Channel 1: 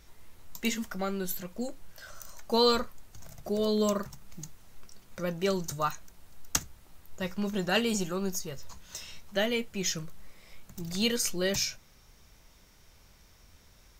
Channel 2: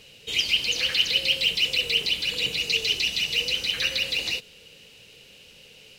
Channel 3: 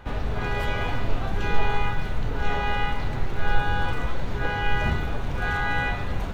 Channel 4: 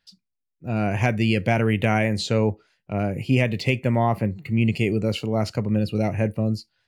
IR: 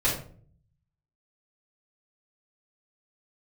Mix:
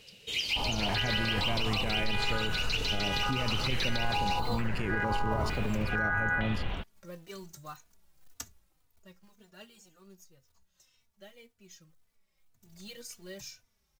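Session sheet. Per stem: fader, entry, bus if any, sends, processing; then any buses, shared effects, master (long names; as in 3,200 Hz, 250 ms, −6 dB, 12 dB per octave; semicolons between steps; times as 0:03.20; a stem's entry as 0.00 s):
0:03.77 −22.5 dB → 0:04.09 −11.5 dB → 0:08.53 −11.5 dB → 0:09.28 −22 dB → 0:12.45 −22 dB → 0:12.74 −14.5 dB, 1.85 s, no send, high-shelf EQ 4,400 Hz +3 dB; floating-point word with a short mantissa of 2 bits; barber-pole flanger 3.3 ms −1.9 Hz
−5.5 dB, 0.00 s, no send, no processing
−7.0 dB, 0.50 s, no send, low-pass on a step sequencer 2.2 Hz 900–3,100 Hz
−3.5 dB, 0.00 s, no send, output level in coarse steps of 9 dB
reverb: not used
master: brickwall limiter −20.5 dBFS, peak gain reduction 11 dB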